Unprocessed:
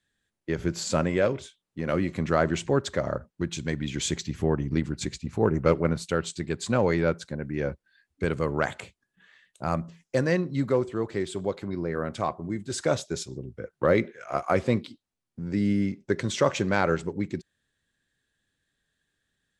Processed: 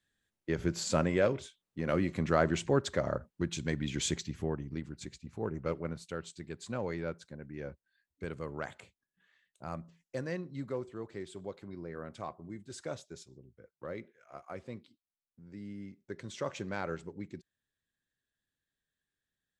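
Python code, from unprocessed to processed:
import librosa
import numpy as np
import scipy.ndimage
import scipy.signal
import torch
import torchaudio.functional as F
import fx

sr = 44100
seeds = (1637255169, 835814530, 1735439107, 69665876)

y = fx.gain(x, sr, db=fx.line((4.08, -4.0), (4.73, -13.0), (12.6, -13.0), (13.71, -20.0), (15.73, -20.0), (16.54, -13.0)))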